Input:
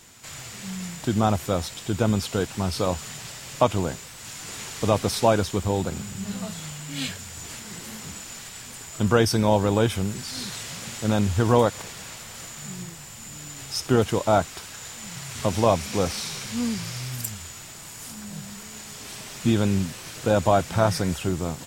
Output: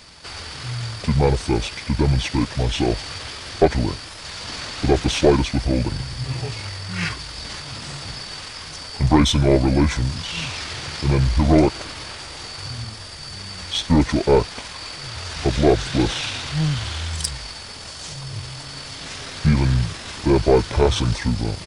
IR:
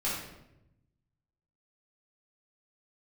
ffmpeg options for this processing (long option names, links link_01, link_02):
-af "asetrate=28595,aresample=44100,atempo=1.54221,aeval=exprs='0.631*(cos(1*acos(clip(val(0)/0.631,-1,1)))-cos(1*PI/2))+0.0398*(cos(5*acos(clip(val(0)/0.631,-1,1)))-cos(5*PI/2))+0.0501*(cos(6*acos(clip(val(0)/0.631,-1,1)))-cos(6*PI/2))+0.0112*(cos(8*acos(clip(val(0)/0.631,-1,1)))-cos(8*PI/2))':channel_layout=same,volume=3.5dB"